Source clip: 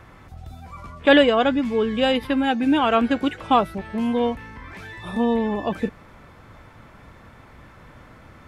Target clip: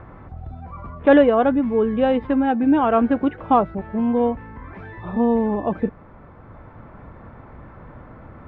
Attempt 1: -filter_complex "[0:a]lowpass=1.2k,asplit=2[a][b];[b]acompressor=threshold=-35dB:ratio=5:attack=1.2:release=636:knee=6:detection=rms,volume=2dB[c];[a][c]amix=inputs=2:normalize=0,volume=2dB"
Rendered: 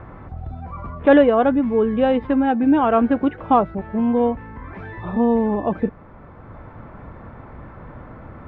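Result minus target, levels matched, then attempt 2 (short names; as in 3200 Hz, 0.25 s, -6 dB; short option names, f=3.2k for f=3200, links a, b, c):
compressor: peak gain reduction -9.5 dB
-filter_complex "[0:a]lowpass=1.2k,asplit=2[a][b];[b]acompressor=threshold=-47dB:ratio=5:attack=1.2:release=636:knee=6:detection=rms,volume=2dB[c];[a][c]amix=inputs=2:normalize=0,volume=2dB"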